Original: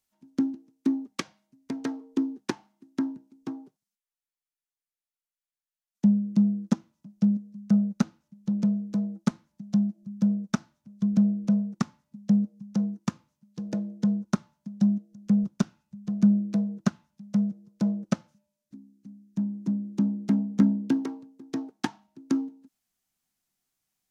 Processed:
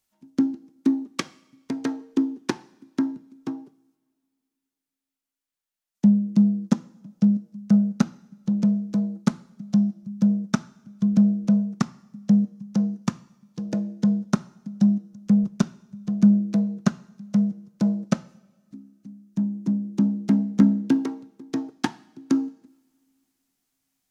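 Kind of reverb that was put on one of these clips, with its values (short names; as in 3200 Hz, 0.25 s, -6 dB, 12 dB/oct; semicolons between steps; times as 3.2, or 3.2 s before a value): two-slope reverb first 0.72 s, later 2.5 s, from -18 dB, DRR 18 dB; gain +4 dB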